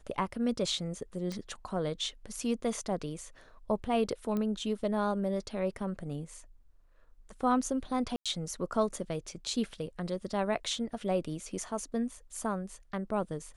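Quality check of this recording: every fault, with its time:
0:01.32: click −25 dBFS
0:04.37: click −22 dBFS
0:08.16–0:08.26: drop-out 96 ms

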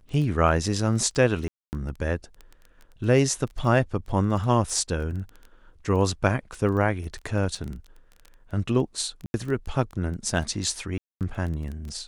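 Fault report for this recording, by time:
surface crackle 11 per second −31 dBFS
0:01.48–0:01.73: drop-out 249 ms
0:07.55: drop-out 3.8 ms
0:09.26–0:09.34: drop-out 81 ms
0:10.98–0:11.21: drop-out 228 ms

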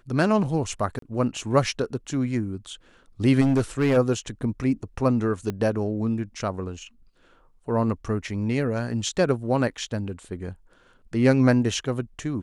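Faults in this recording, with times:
0:00.99–0:01.02: drop-out 33 ms
0:03.40–0:03.98: clipping −16.5 dBFS
0:05.50: click −16 dBFS

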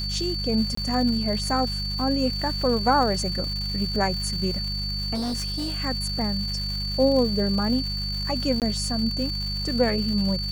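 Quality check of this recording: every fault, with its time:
surface crackle 380 per second −32 dBFS
mains hum 50 Hz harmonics 4 −31 dBFS
whistle 4,500 Hz −29 dBFS
0:00.75–0:00.77: drop-out 24 ms
0:05.14–0:05.81: clipping −24.5 dBFS
0:08.60–0:08.62: drop-out 18 ms

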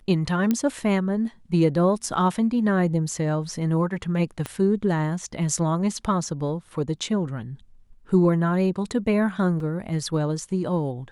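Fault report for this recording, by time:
0:00.51: click −10 dBFS
0:04.46: click −15 dBFS
0:09.60: drop-out 2.6 ms

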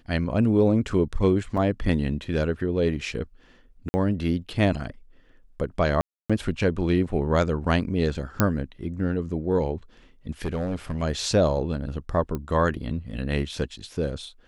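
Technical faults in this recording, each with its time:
0:01.57–0:01.58: drop-out 5.1 ms
0:03.89–0:03.94: drop-out 50 ms
0:06.01–0:06.30: drop-out 286 ms
0:08.40: click −5 dBFS
0:10.42–0:11.03: clipping −23 dBFS
0:12.35: click −18 dBFS

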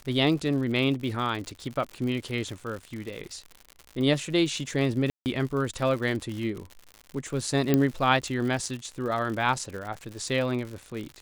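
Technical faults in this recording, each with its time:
surface crackle 120 per second −34 dBFS
0:05.10–0:05.26: drop-out 159 ms
0:07.74: click −9 dBFS

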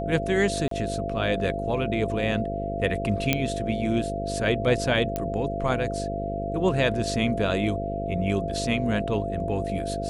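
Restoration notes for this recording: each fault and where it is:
mains buzz 50 Hz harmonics 11 −32 dBFS
whistle 680 Hz −30 dBFS
0:00.68–0:00.71: drop-out 33 ms
0:03.33: click −6 dBFS
0:05.16: click −13 dBFS

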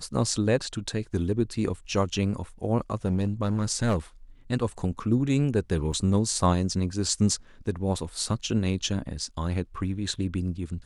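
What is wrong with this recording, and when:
0:03.05–0:03.96: clipping −19 dBFS
0:05.92–0:05.93: drop-out 5.1 ms

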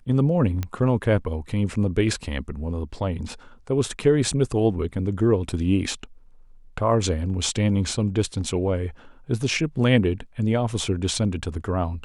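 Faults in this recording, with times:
0:00.63: click −14 dBFS

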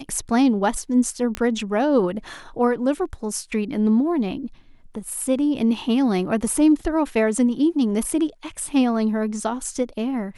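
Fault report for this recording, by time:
0:01.35: click −11 dBFS

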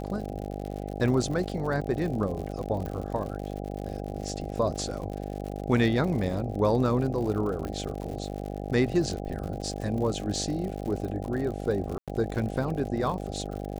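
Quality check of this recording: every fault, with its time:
mains buzz 50 Hz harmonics 16 −35 dBFS
surface crackle 100 per second −35 dBFS
0:02.86: click
0:07.65: click −22 dBFS
0:11.98–0:12.08: drop-out 97 ms

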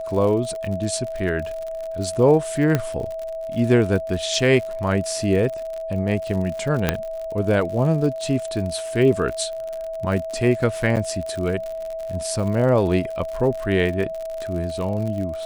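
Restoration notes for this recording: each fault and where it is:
surface crackle 67 per second −28 dBFS
whistle 650 Hz −27 dBFS
0:02.75: click −7 dBFS
0:06.89: click −3 dBFS
0:10.96–0:10.97: drop-out 8 ms

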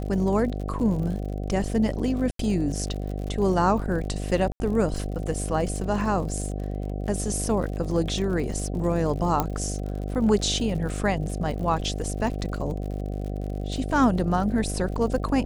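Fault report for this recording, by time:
mains buzz 50 Hz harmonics 15 −30 dBFS
surface crackle 60 per second −34 dBFS
0:02.31–0:02.39: drop-out 83 ms
0:04.52–0:04.60: drop-out 80 ms
0:09.40: click −9 dBFS

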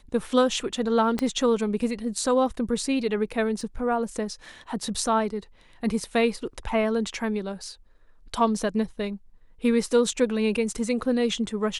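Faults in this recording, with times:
0:01.19: click −13 dBFS
0:03.61: drop-out 2.3 ms

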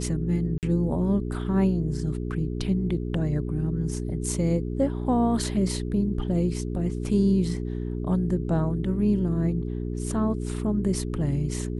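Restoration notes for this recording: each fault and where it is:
mains hum 60 Hz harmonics 7 −30 dBFS
0:00.58–0:00.63: drop-out 48 ms

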